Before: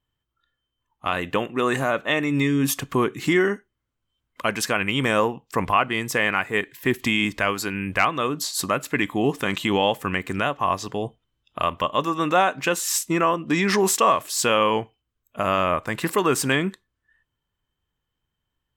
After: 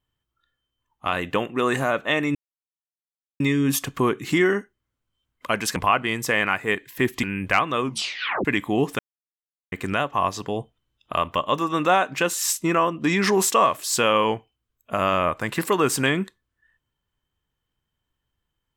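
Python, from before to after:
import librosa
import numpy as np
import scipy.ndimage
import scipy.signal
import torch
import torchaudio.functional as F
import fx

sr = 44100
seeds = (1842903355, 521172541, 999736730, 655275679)

y = fx.edit(x, sr, fx.insert_silence(at_s=2.35, length_s=1.05),
    fx.cut(start_s=4.71, length_s=0.91),
    fx.cut(start_s=7.09, length_s=0.6),
    fx.tape_stop(start_s=8.27, length_s=0.64),
    fx.silence(start_s=9.45, length_s=0.73), tone=tone)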